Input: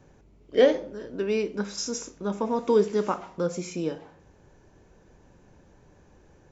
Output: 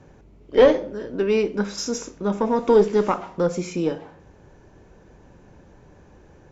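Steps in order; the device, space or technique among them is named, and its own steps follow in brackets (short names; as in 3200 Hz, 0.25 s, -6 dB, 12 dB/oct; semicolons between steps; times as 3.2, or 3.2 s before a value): tube preamp driven hard (tube stage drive 12 dB, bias 0.35; high shelf 5300 Hz -8 dB); gain +7.5 dB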